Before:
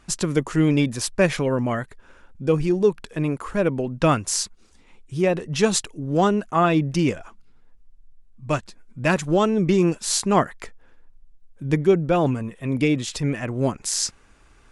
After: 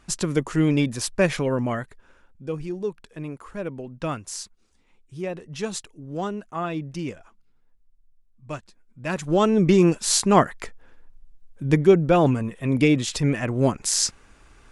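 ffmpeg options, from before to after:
-af "volume=10.5dB,afade=t=out:st=1.65:d=0.78:silence=0.375837,afade=t=in:st=9.05:d=0.5:silence=0.251189"

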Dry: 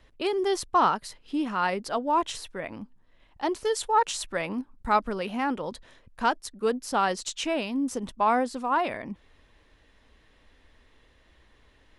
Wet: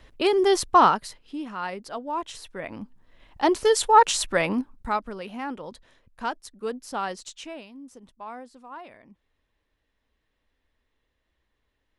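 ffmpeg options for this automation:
-af "volume=18.5dB,afade=t=out:st=0.75:d=0.61:silence=0.266073,afade=t=in:st=2.29:d=1.16:silence=0.237137,afade=t=out:st=4.48:d=0.5:silence=0.251189,afade=t=out:st=7.07:d=0.67:silence=0.281838"

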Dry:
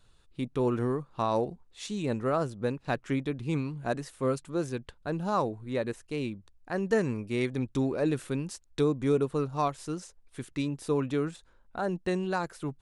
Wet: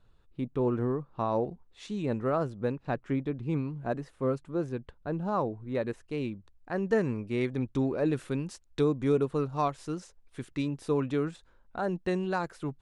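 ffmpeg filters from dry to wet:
-af "asetnsamples=n=441:p=0,asendcmd='1.45 lowpass f 2100;2.87 lowpass f 1200;5.75 lowpass f 2600;8.13 lowpass f 4400',lowpass=f=1.2k:p=1"

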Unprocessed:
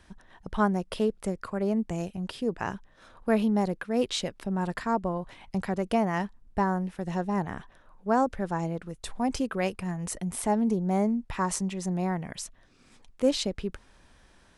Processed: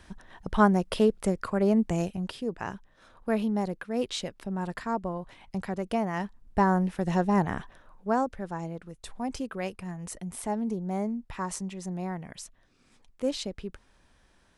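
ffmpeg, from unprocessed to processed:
-af "volume=11.5dB,afade=t=out:st=2:d=0.43:silence=0.446684,afade=t=in:st=6.15:d=0.65:silence=0.421697,afade=t=out:st=7.58:d=0.73:silence=0.334965"

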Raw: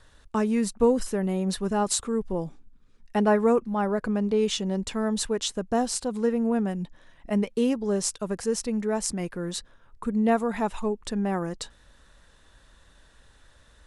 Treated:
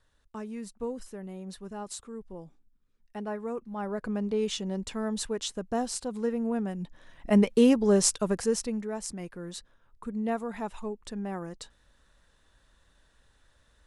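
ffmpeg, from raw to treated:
-af "volume=4dB,afade=t=in:st=3.51:d=0.63:silence=0.354813,afade=t=in:st=6.77:d=0.59:silence=0.354813,afade=t=out:st=8.1:d=0.78:silence=0.251189"

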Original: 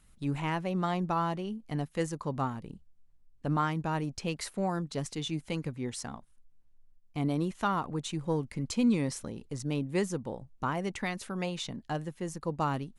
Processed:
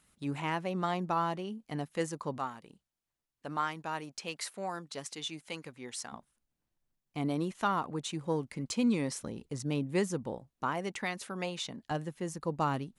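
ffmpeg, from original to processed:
-af "asetnsamples=n=441:p=0,asendcmd='2.38 highpass f 860;6.12 highpass f 210;9.22 highpass f 81;10.38 highpass f 290;11.91 highpass f 99',highpass=f=240:p=1"

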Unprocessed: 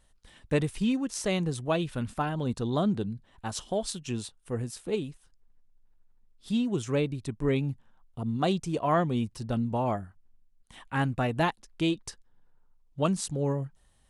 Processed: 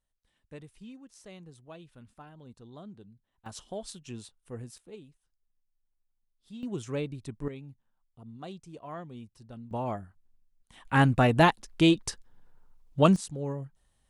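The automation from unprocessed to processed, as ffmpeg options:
-af "asetnsamples=n=441:p=0,asendcmd='3.46 volume volume -8.5dB;4.78 volume volume -16.5dB;6.63 volume volume -5.5dB;7.48 volume volume -16dB;9.71 volume volume -4.5dB;10.85 volume volume 6dB;13.16 volume volume -5.5dB',volume=-20dB"

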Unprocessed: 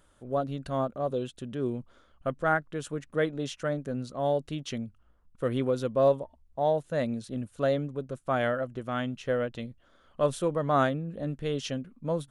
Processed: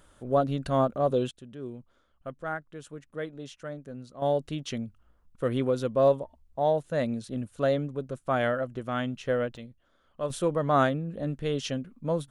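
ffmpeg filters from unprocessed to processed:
-af "asetnsamples=n=441:p=0,asendcmd='1.31 volume volume -8dB;4.22 volume volume 1dB;9.57 volume volume -6dB;10.3 volume volume 1.5dB',volume=5dB"

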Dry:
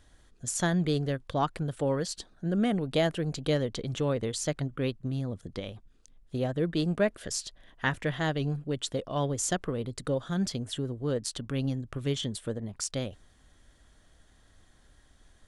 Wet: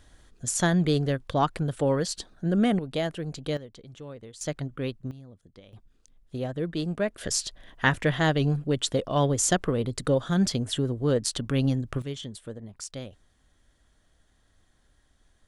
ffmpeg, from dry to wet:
-af "asetnsamples=n=441:p=0,asendcmd='2.79 volume volume -2.5dB;3.57 volume volume -13dB;4.41 volume volume -1dB;5.11 volume volume -14dB;5.73 volume volume -1.5dB;7.18 volume volume 6dB;12.02 volume volume -5dB',volume=4dB"

